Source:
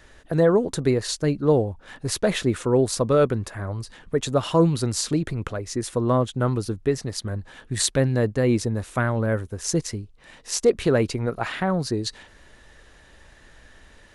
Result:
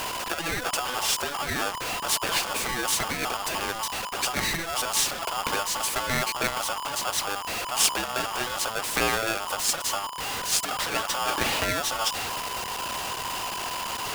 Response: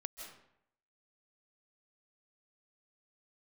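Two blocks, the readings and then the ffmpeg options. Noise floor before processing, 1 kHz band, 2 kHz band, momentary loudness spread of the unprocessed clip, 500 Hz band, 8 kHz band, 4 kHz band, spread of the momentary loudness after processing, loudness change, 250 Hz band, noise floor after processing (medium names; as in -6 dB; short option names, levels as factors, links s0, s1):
-52 dBFS, +4.5 dB, +6.0 dB, 11 LU, -11.5 dB, +4.0 dB, +6.0 dB, 6 LU, -3.0 dB, -14.0 dB, -34 dBFS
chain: -af "aeval=exprs='val(0)+0.5*0.0501*sgn(val(0))':c=same,bandreject=f=60:t=h:w=6,bandreject=f=120:t=h:w=6,afftfilt=real='re*lt(hypot(re,im),0.447)':imag='im*lt(hypot(re,im),0.447)':win_size=1024:overlap=0.75,aeval=exprs='val(0)*sgn(sin(2*PI*1000*n/s))':c=same"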